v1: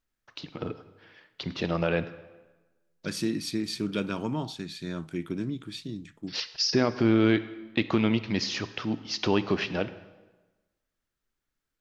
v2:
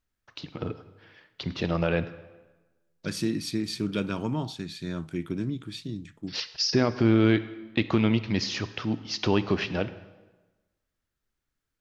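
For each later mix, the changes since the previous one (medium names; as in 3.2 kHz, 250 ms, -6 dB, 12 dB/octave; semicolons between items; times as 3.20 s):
master: add peaking EQ 81 Hz +6 dB 1.6 oct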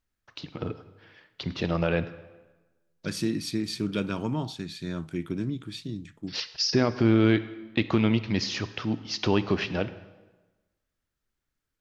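no change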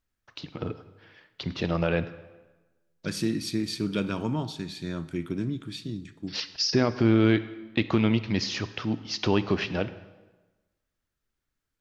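second voice: send on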